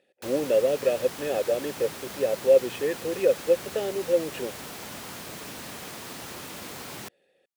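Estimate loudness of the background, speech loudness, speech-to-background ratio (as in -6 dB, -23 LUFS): -38.0 LUFS, -26.0 LUFS, 12.0 dB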